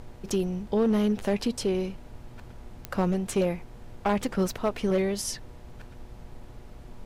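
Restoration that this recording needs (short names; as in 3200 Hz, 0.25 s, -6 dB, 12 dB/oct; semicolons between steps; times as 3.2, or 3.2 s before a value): clip repair -18 dBFS; de-click; de-hum 120.6 Hz, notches 8; noise print and reduce 28 dB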